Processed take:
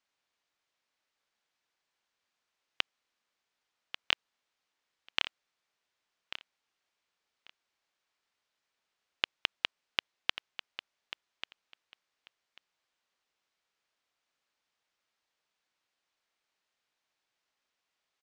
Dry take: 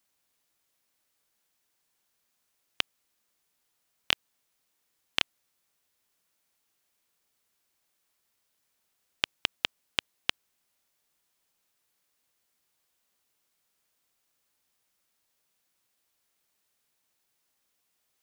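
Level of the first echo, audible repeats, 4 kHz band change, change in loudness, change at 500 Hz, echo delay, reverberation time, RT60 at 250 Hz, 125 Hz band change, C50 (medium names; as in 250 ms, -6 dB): -12.0 dB, 2, -2.5 dB, -3.5 dB, -4.0 dB, 1141 ms, no reverb, no reverb, -9.0 dB, no reverb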